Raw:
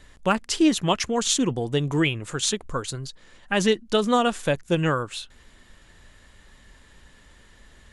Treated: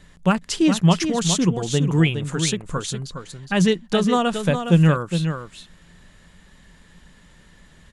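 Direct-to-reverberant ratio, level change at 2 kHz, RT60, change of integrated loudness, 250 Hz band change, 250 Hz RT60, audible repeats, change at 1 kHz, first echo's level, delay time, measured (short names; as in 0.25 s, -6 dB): none, +0.5 dB, none, +3.5 dB, +5.0 dB, none, 1, +0.5 dB, -8.0 dB, 0.413 s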